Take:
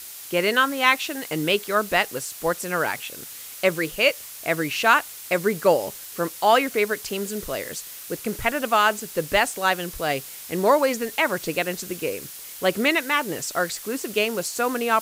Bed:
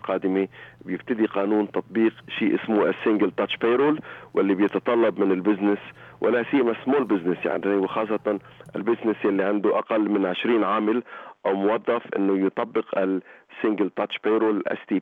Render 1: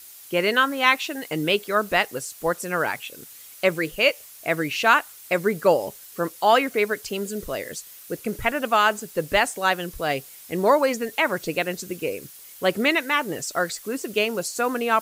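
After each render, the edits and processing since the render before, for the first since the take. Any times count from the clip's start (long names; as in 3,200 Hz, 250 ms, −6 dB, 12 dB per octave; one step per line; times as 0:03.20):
broadband denoise 8 dB, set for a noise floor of −39 dBFS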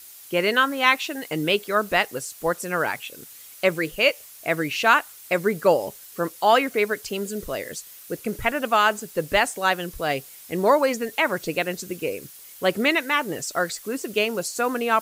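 no processing that can be heard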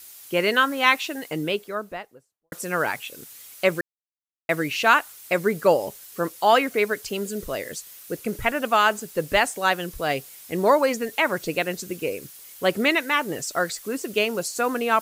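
0:00.96–0:02.52: fade out and dull
0:03.81–0:04.49: silence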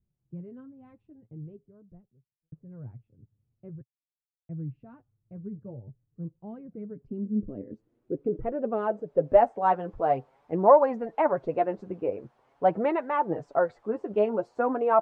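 low-pass filter sweep 120 Hz → 830 Hz, 0:06.15–0:09.75
flanger 0.46 Hz, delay 4.8 ms, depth 5.4 ms, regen +21%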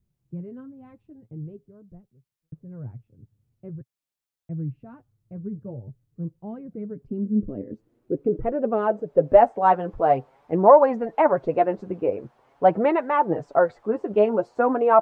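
level +5.5 dB
brickwall limiter −3 dBFS, peak gain reduction 2.5 dB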